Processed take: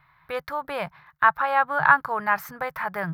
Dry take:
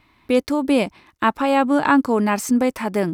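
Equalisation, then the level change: FFT filter 110 Hz 0 dB, 150 Hz +14 dB, 240 Hz -22 dB, 700 Hz +4 dB, 1.6 kHz +14 dB, 2.7 kHz -3 dB, 3.8 kHz -1 dB, 8.4 kHz -16 dB, 13 kHz +6 dB; -8.0 dB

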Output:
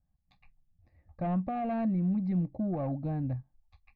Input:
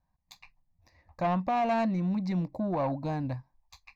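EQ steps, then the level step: Butterworth band-stop 980 Hz, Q 5.1; distance through air 380 m; bass shelf 400 Hz +11 dB; -8.0 dB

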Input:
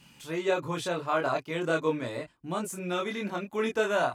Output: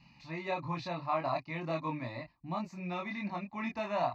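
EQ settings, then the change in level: distance through air 240 m; peaking EQ 4.2 kHz +8.5 dB 0.43 oct; static phaser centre 2.2 kHz, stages 8; 0.0 dB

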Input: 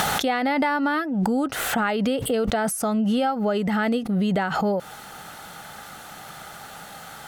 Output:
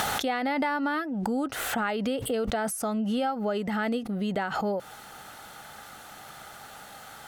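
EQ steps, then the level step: peaking EQ 170 Hz -9 dB 0.25 oct; -5.0 dB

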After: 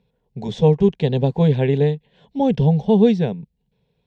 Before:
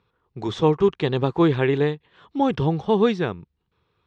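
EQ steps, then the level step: bass shelf 450 Hz +10.5 dB; static phaser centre 330 Hz, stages 6; 0.0 dB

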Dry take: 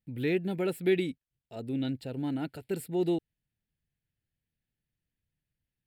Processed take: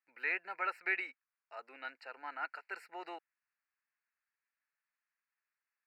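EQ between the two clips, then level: ladder high-pass 1 kHz, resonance 45%; Butterworth band-stop 3.4 kHz, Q 1.9; distance through air 230 m; +14.0 dB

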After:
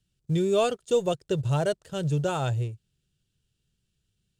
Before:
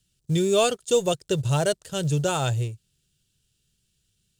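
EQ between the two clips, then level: treble shelf 3.4 kHz -11 dB; -2.0 dB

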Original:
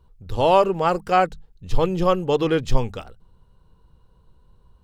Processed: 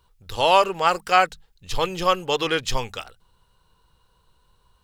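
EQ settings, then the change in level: tilt shelf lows -9 dB, about 800 Hz; peaking EQ 220 Hz -2 dB 0.99 oct; 0.0 dB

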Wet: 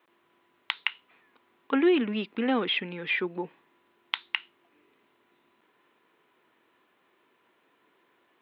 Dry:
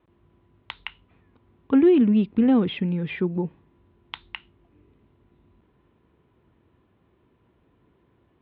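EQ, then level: high-pass 310 Hz 12 dB/octave; tilt EQ +2.5 dB/octave; peaking EQ 1.8 kHz +5 dB 1.7 oct; 0.0 dB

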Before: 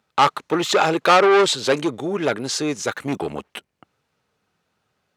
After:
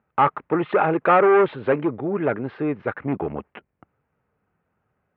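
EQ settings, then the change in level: low-pass 2.4 kHz 24 dB/octave; distance through air 410 m; bass shelf 74 Hz +9 dB; 0.0 dB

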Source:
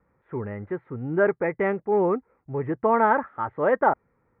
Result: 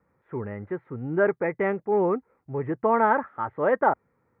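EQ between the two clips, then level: high-pass 69 Hz; -1.0 dB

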